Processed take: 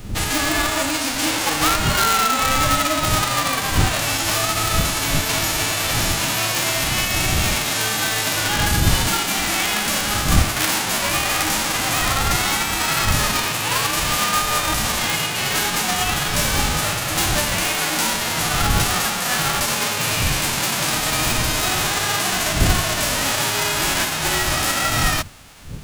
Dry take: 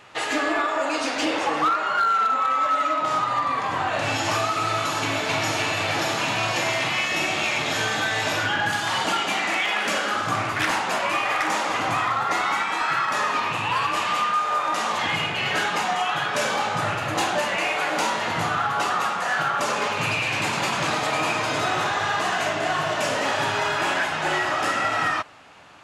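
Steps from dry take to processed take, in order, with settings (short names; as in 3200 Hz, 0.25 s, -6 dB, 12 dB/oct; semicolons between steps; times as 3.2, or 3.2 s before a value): spectral whitening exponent 0.3; wind noise 120 Hz -30 dBFS; gain +3 dB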